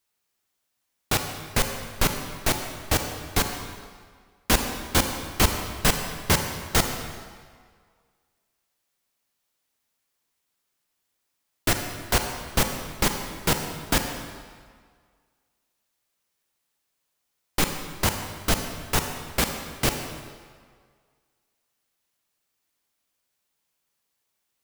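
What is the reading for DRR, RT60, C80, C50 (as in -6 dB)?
5.0 dB, 1.8 s, 7.0 dB, 6.0 dB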